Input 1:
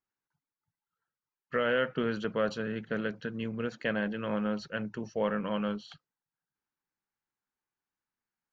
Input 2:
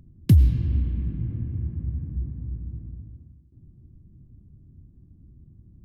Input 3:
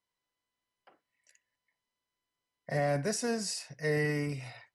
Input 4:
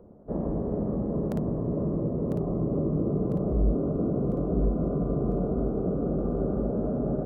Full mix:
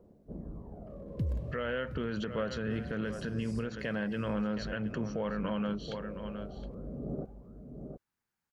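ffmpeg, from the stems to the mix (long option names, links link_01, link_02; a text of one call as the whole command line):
ffmpeg -i stem1.wav -i stem2.wav -i stem3.wav -i stem4.wav -filter_complex "[0:a]equalizer=frequency=91:width=0.73:gain=6.5,volume=3dB,asplit=3[link_01][link_02][link_03];[link_02]volume=-14.5dB[link_04];[1:a]acrusher=bits=7:mix=0:aa=0.000001,aemphasis=mode=reproduction:type=75kf,adelay=900,volume=-16.5dB,asplit=2[link_05][link_06];[link_06]volume=-10.5dB[link_07];[2:a]acompressor=threshold=-47dB:ratio=1.5,volume=-12.5dB,asplit=2[link_08][link_09];[link_09]volume=-17dB[link_10];[3:a]aphaser=in_gain=1:out_gain=1:delay=1.9:decay=0.68:speed=0.41:type=sinusoidal,volume=-17.5dB,asplit=2[link_11][link_12];[link_12]volume=-7dB[link_13];[link_03]apad=whole_len=320051[link_14];[link_11][link_14]sidechaincompress=threshold=-39dB:ratio=8:attack=16:release=295[link_15];[link_04][link_07][link_10][link_13]amix=inputs=4:normalize=0,aecho=0:1:717:1[link_16];[link_01][link_05][link_08][link_15][link_16]amix=inputs=5:normalize=0,alimiter=level_in=0.5dB:limit=-24dB:level=0:latency=1:release=145,volume=-0.5dB" out.wav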